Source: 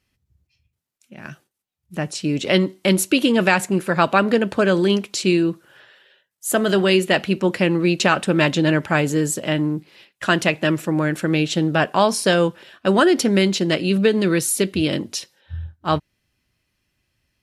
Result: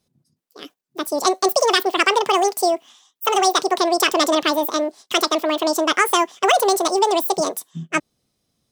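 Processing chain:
wrong playback speed 7.5 ips tape played at 15 ips

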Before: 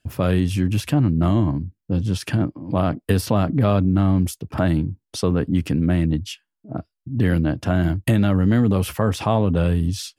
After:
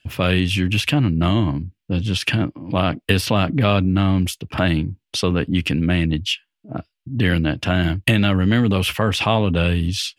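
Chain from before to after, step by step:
parametric band 2,800 Hz +14 dB 1.4 octaves

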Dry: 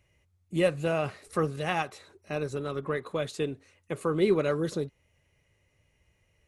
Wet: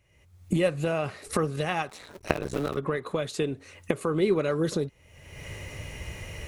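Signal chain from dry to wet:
0:01.89–0:02.77: sub-harmonics by changed cycles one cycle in 2, muted
camcorder AGC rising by 42 dB per second

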